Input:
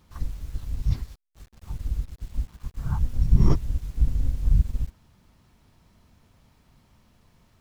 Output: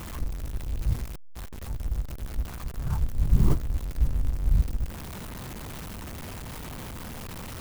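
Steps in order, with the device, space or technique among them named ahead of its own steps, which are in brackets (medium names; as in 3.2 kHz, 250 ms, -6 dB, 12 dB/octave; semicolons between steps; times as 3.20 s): early CD player with a faulty converter (jump at every zero crossing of -28.5 dBFS; sampling jitter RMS 0.051 ms); trim -3.5 dB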